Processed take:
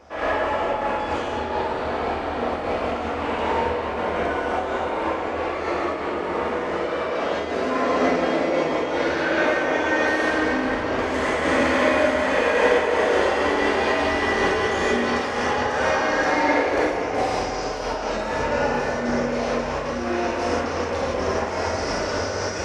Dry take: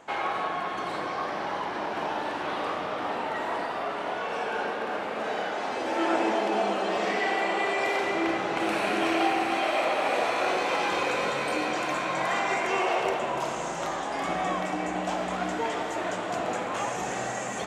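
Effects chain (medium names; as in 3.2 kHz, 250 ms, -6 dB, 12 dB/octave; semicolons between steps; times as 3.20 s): resonant low shelf 130 Hz +7.5 dB, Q 3; tape speed -22%; gated-style reverb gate 200 ms flat, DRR -6.5 dB; random flutter of the level, depth 55%; trim +2 dB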